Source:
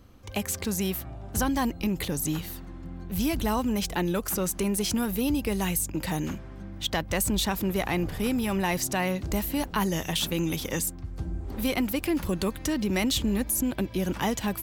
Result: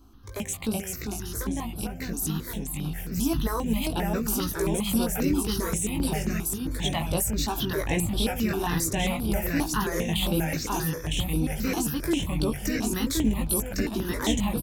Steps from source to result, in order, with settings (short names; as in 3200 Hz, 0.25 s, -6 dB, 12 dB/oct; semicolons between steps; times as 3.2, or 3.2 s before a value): 0.72–2.17 compressor, threshold -30 dBFS, peak gain reduction 8 dB; doubler 18 ms -4.5 dB; echoes that change speed 0.355 s, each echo -1 st, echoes 2; step phaser 7.5 Hz 530–6700 Hz